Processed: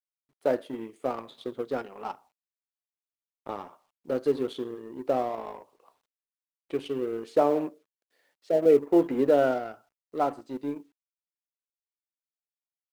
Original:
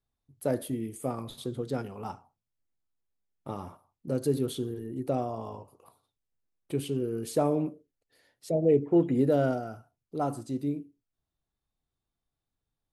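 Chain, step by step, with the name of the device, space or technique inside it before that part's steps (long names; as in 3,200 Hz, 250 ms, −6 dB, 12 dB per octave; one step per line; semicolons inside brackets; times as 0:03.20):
phone line with mismatched companding (band-pass filter 380–3,400 Hz; mu-law and A-law mismatch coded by A)
0:07.41–0:08.66: high-pass filter 130 Hz
level +6.5 dB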